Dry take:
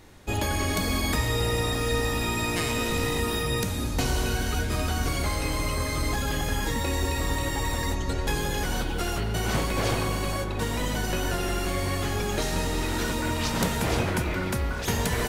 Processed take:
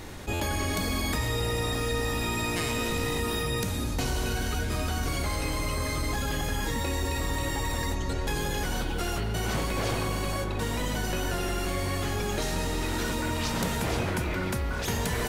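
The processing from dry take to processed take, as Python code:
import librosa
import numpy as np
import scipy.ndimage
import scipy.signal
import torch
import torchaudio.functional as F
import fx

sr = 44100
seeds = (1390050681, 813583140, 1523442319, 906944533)

y = fx.buffer_glitch(x, sr, at_s=(0.33,), block=512, repeats=5)
y = fx.env_flatten(y, sr, amount_pct=50)
y = F.gain(torch.from_numpy(y), -4.5).numpy()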